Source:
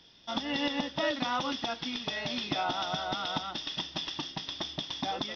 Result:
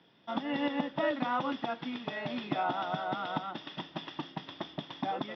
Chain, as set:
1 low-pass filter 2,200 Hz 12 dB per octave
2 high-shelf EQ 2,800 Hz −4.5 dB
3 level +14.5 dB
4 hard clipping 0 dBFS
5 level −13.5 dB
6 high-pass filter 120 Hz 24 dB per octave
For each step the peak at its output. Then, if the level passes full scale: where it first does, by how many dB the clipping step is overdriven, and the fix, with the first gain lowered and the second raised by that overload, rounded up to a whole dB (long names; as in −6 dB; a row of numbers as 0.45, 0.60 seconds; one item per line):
−18.0, −18.0, −3.5, −3.5, −17.0, −17.0 dBFS
no step passes full scale